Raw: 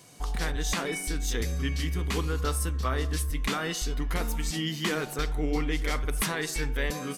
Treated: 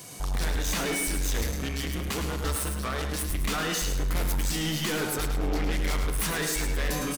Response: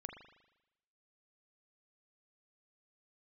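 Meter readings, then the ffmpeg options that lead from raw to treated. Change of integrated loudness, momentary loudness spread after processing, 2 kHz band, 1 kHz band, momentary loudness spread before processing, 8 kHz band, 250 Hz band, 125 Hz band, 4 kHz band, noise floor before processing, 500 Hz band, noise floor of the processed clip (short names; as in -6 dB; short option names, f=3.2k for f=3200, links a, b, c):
+1.5 dB, 3 LU, +1.0 dB, +0.5 dB, 2 LU, +3.5 dB, +0.5 dB, 0.0 dB, +2.0 dB, -37 dBFS, +0.5 dB, -32 dBFS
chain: -filter_complex "[0:a]highshelf=f=9.2k:g=9,asoftclip=type=tanh:threshold=-34.5dB,aecho=1:1:107|214|321|428:0.447|0.147|0.0486|0.0161,asplit=2[a][b];[1:a]atrim=start_sample=2205[c];[b][c]afir=irnorm=-1:irlink=0,volume=3dB[d];[a][d]amix=inputs=2:normalize=0,volume=2.5dB"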